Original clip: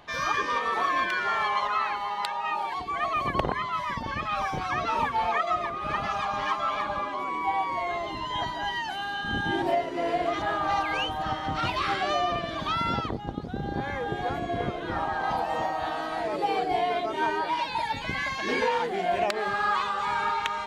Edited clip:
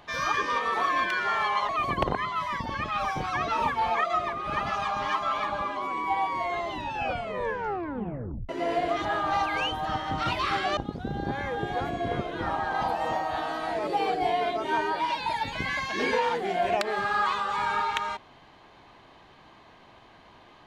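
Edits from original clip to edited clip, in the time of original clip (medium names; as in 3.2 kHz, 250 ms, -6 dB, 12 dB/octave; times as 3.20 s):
1.69–3.06 s: delete
8.06 s: tape stop 1.80 s
12.14–13.26 s: delete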